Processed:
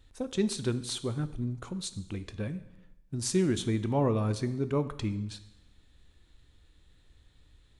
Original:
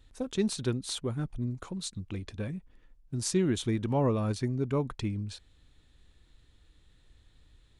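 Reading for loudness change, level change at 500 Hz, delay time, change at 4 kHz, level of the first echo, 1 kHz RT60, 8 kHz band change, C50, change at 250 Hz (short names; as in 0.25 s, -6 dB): +0.5 dB, +0.5 dB, none, +0.5 dB, none, 0.95 s, +0.5 dB, 14.5 dB, +0.5 dB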